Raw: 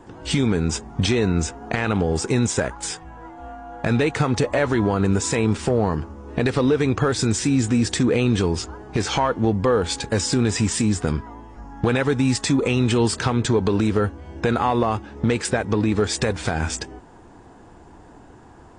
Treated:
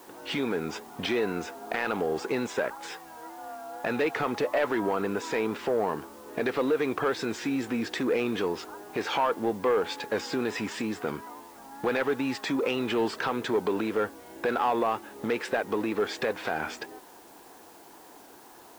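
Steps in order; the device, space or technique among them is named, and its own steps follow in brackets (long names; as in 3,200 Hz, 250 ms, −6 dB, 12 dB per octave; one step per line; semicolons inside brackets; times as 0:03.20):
tape answering machine (band-pass filter 370–2,900 Hz; soft clipping −15 dBFS, distortion −17 dB; tape wow and flutter; white noise bed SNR 26 dB)
level −2 dB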